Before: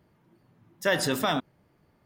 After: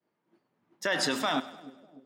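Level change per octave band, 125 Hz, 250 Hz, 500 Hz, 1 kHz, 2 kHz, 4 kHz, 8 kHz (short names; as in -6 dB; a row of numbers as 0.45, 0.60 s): -10.0, -2.5, -4.5, -1.5, -1.5, 0.0, -1.5 dB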